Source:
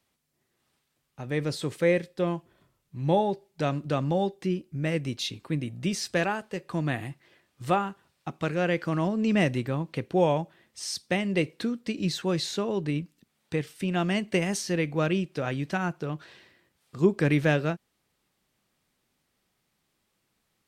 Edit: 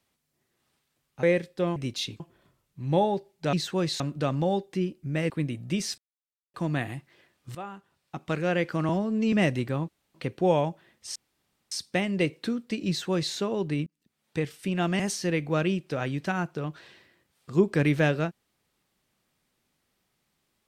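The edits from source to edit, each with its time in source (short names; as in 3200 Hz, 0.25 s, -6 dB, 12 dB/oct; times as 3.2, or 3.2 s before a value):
1.23–1.83 cut
4.99–5.43 move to 2.36
6.11–6.67 mute
7.68–8.48 fade in, from -18 dB
9.02–9.31 stretch 1.5×
9.87 insert room tone 0.26 s
10.88 insert room tone 0.56 s
12.04–12.51 copy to 3.69
13.03–13.54 fade in
14.16–14.45 cut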